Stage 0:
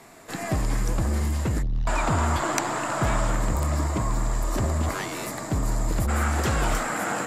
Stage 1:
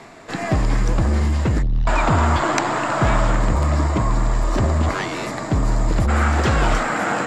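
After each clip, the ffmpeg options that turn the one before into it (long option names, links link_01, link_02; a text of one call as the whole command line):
ffmpeg -i in.wav -af "lowpass=5100,areverse,acompressor=mode=upward:threshold=-41dB:ratio=2.5,areverse,volume=6.5dB" out.wav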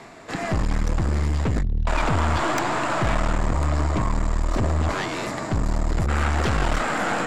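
ffmpeg -i in.wav -af "aeval=exprs='(tanh(8.91*val(0)+0.55)-tanh(0.55))/8.91':channel_layout=same,volume=1dB" out.wav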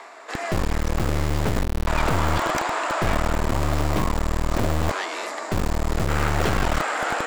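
ffmpeg -i in.wav -filter_complex "[0:a]acrossover=split=360|1000|1300[link_01][link_02][link_03][link_04];[link_01]acrusher=bits=3:mix=0:aa=0.000001[link_05];[link_03]acompressor=mode=upward:threshold=-40dB:ratio=2.5[link_06];[link_05][link_02][link_06][link_04]amix=inputs=4:normalize=0" out.wav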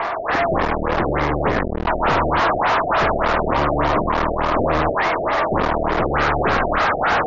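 ffmpeg -i in.wav -filter_complex "[0:a]asplit=2[link_01][link_02];[link_02]highpass=frequency=720:poles=1,volume=33dB,asoftclip=type=tanh:threshold=-8.5dB[link_03];[link_01][link_03]amix=inputs=2:normalize=0,lowpass=frequency=4900:poles=1,volume=-6dB,adynamicsmooth=sensitivity=0.5:basefreq=720,afftfilt=real='re*lt(b*sr/1024,730*pow(7300/730,0.5+0.5*sin(2*PI*3.4*pts/sr)))':imag='im*lt(b*sr/1024,730*pow(7300/730,0.5+0.5*sin(2*PI*3.4*pts/sr)))':win_size=1024:overlap=0.75" out.wav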